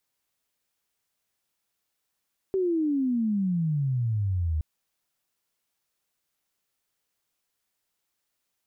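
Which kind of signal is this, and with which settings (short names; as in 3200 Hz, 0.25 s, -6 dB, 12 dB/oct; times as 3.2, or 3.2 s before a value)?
chirp logarithmic 390 Hz -> 75 Hz -22 dBFS -> -23.5 dBFS 2.07 s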